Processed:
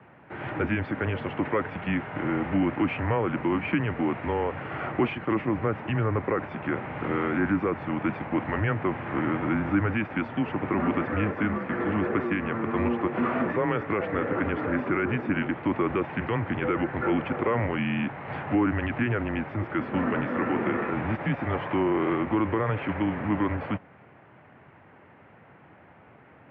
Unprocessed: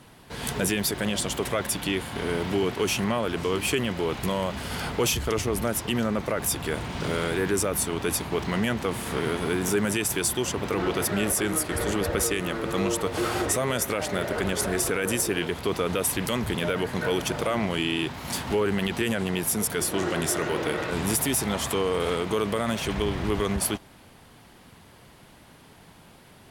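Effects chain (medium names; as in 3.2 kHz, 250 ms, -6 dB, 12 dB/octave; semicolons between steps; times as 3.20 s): mistuned SSB -110 Hz 170–2400 Hz; high-pass 90 Hz 24 dB/octave; trim +1.5 dB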